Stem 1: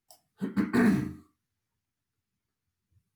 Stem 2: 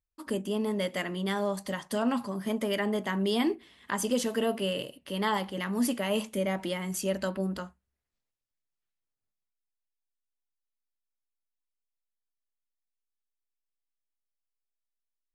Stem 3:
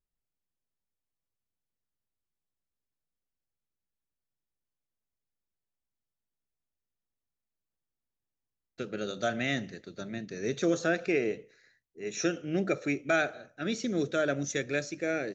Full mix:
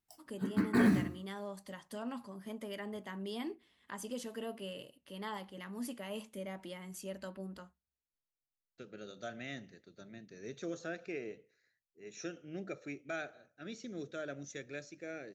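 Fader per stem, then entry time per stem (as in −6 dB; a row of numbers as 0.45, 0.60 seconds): −3.5, −13.5, −13.5 decibels; 0.00, 0.00, 0.00 seconds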